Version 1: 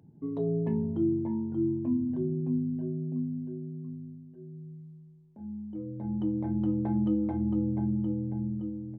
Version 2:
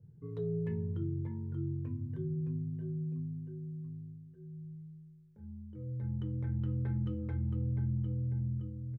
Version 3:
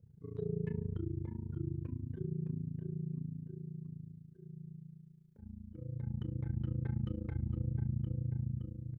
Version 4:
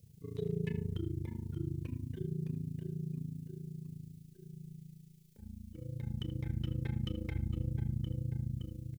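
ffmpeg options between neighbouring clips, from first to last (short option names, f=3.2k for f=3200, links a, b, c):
-filter_complex "[0:a]firequalizer=gain_entry='entry(120,0);entry(260,-25);entry(450,-7);entry(670,-26);entry(1400,-4);entry(2800,-9)':delay=0.05:min_phase=1,asplit=2[a][b];[b]alimiter=level_in=11dB:limit=-24dB:level=0:latency=1:release=134,volume=-11dB,volume=-2.5dB[c];[a][c]amix=inputs=2:normalize=0,adynamicequalizer=threshold=0.00112:dfrequency=1500:dqfactor=0.7:tfrequency=1500:tqfactor=0.7:attack=5:release=100:ratio=0.375:range=2.5:mode=boostabove:tftype=highshelf"
-af "tremolo=f=28:d=0.947,volume=1.5dB"
-filter_complex "[0:a]asubboost=boost=3:cutoff=51,asplit=2[a][b];[b]adelay=80,highpass=300,lowpass=3.4k,asoftclip=type=hard:threshold=-33.5dB,volume=-13dB[c];[a][c]amix=inputs=2:normalize=0,aexciter=amount=7:drive=2.9:freq=2.1k,volume=1.5dB"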